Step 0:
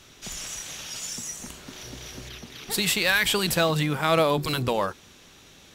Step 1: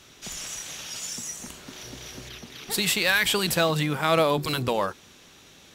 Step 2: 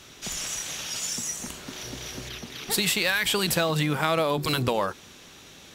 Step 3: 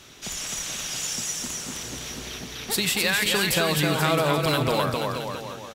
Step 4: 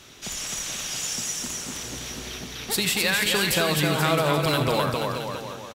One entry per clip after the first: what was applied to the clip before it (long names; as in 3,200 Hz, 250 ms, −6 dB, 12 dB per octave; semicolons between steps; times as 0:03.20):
low-shelf EQ 68 Hz −7 dB
downward compressor, threshold −24 dBFS, peak gain reduction 7.5 dB; level +3.5 dB
bouncing-ball delay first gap 260 ms, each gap 0.85×, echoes 5
single-tap delay 81 ms −13.5 dB